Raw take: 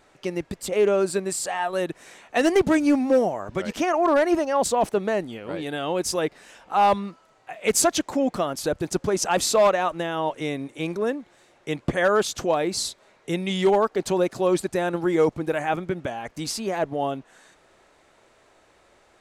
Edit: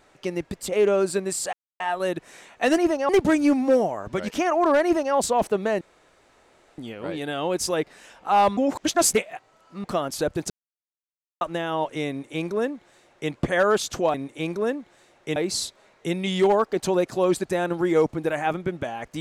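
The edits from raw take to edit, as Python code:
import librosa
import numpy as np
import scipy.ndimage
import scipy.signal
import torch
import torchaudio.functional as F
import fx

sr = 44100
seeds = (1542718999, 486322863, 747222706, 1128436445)

y = fx.edit(x, sr, fx.insert_silence(at_s=1.53, length_s=0.27),
    fx.duplicate(start_s=4.26, length_s=0.31, to_s=2.51),
    fx.insert_room_tone(at_s=5.23, length_s=0.97),
    fx.reverse_span(start_s=7.02, length_s=1.27),
    fx.silence(start_s=8.95, length_s=0.91),
    fx.duplicate(start_s=10.54, length_s=1.22, to_s=12.59), tone=tone)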